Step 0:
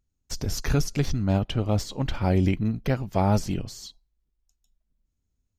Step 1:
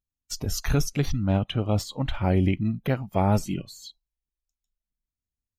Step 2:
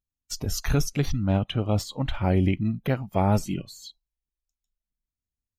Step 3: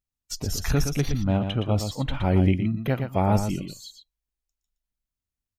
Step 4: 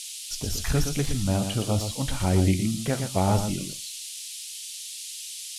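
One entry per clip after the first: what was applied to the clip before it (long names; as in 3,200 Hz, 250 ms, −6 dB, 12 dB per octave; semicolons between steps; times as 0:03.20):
high-shelf EQ 6,100 Hz +4 dB; noise reduction from a noise print of the clip's start 15 dB
no processing that can be heard
single-tap delay 118 ms −7.5 dB
flanger 0.96 Hz, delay 9.5 ms, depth 5.8 ms, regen −66%; noise in a band 2,800–11,000 Hz −41 dBFS; level +3 dB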